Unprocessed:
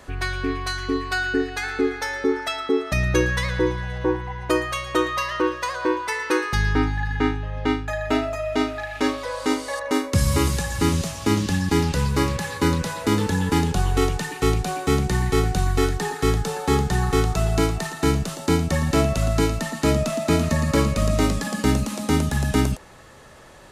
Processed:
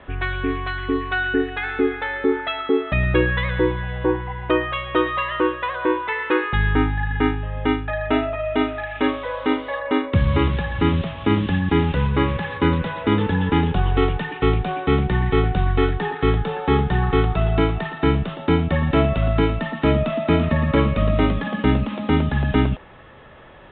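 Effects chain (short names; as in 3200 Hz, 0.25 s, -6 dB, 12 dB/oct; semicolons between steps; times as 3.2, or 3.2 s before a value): steep low-pass 3600 Hz 96 dB/oct; gain +2 dB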